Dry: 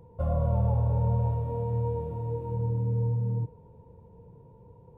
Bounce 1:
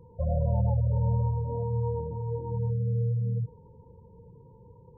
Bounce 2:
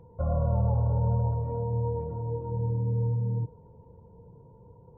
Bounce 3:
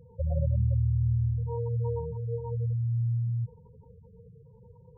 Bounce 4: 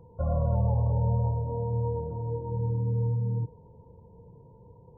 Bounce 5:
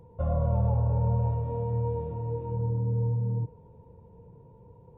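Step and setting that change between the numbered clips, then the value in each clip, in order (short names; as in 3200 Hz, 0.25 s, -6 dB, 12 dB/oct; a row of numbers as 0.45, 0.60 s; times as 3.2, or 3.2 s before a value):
spectral gate, under each frame's peak: -20, -45, -10, -35, -60 dB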